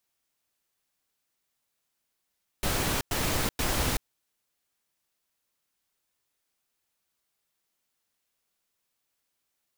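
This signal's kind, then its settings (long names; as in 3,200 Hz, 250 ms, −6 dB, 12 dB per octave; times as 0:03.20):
noise bursts pink, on 0.38 s, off 0.10 s, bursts 3, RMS −27.5 dBFS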